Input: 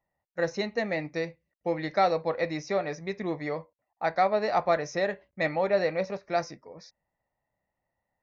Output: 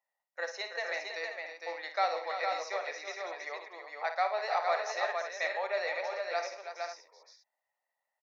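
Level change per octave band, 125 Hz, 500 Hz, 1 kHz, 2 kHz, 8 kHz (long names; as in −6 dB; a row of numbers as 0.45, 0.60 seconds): below −40 dB, −8.0 dB, −3.5 dB, −1.0 dB, can't be measured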